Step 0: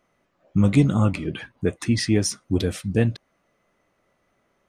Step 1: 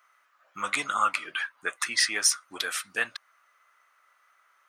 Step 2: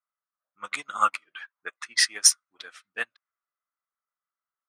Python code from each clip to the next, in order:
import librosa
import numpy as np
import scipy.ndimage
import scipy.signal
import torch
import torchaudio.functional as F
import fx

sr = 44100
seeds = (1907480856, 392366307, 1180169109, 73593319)

y1 = fx.highpass_res(x, sr, hz=1300.0, q=3.2)
y1 = fx.high_shelf(y1, sr, hz=9500.0, db=8.5)
y1 = F.gain(torch.from_numpy(y1), 1.5).numpy()
y2 = fx.env_lowpass(y1, sr, base_hz=1400.0, full_db=-23.0)
y2 = fx.upward_expand(y2, sr, threshold_db=-42.0, expansion=2.5)
y2 = F.gain(torch.from_numpy(y2), 7.0).numpy()